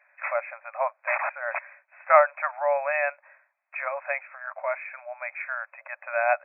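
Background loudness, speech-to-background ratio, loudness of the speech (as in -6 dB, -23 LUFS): -33.0 LUFS, 5.5 dB, -27.5 LUFS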